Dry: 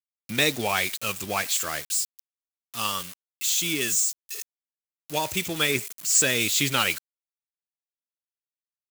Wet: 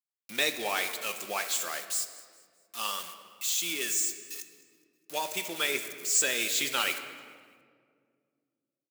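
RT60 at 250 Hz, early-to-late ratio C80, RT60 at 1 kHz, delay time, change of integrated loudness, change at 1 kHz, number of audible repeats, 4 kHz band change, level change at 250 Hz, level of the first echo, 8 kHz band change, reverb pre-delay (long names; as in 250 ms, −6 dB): 2.7 s, 10.5 dB, 1.7 s, 209 ms, −5.0 dB, −5.0 dB, 1, −5.0 dB, −11.0 dB, −22.0 dB, −5.0 dB, 5 ms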